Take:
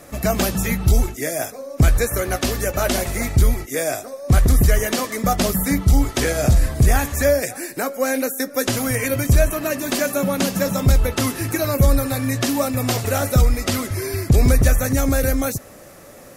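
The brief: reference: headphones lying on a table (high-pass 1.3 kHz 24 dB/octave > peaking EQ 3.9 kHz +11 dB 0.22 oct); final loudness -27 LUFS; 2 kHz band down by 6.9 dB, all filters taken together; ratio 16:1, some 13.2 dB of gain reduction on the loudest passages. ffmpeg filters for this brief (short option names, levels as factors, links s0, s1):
-af "equalizer=f=2000:t=o:g=-8.5,acompressor=threshold=0.0708:ratio=16,highpass=f=1300:w=0.5412,highpass=f=1300:w=1.3066,equalizer=f=3900:t=o:w=0.22:g=11,volume=2"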